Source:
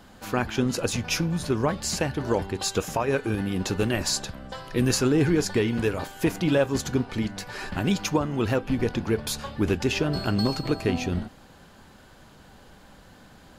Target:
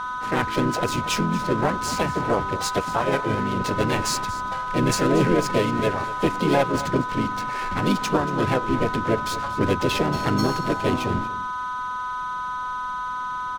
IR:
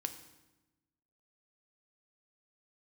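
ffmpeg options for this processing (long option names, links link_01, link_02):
-filter_complex "[0:a]aeval=exprs='0.282*(cos(1*acos(clip(val(0)/0.282,-1,1)))-cos(1*PI/2))+0.0316*(cos(2*acos(clip(val(0)/0.282,-1,1)))-cos(2*PI/2))+0.00794*(cos(3*acos(clip(val(0)/0.282,-1,1)))-cos(3*PI/2))+0.00631*(cos(4*acos(clip(val(0)/0.282,-1,1)))-cos(4*PI/2))':channel_layout=same,aeval=exprs='val(0)+0.0355*sin(2*PI*1000*n/s)':channel_layout=same,asplit=3[link_01][link_02][link_03];[link_02]asetrate=55563,aresample=44100,atempo=0.793701,volume=-3dB[link_04];[link_03]asetrate=66075,aresample=44100,atempo=0.66742,volume=-6dB[link_05];[link_01][link_04][link_05]amix=inputs=3:normalize=0,adynamicsmooth=sensitivity=7:basefreq=1400,asplit=2[link_06][link_07];[link_07]aecho=0:1:234:0.158[link_08];[link_06][link_08]amix=inputs=2:normalize=0"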